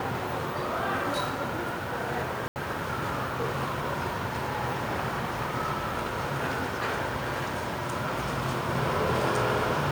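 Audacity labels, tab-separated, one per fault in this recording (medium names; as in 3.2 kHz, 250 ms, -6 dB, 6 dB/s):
2.480000	2.560000	dropout 79 ms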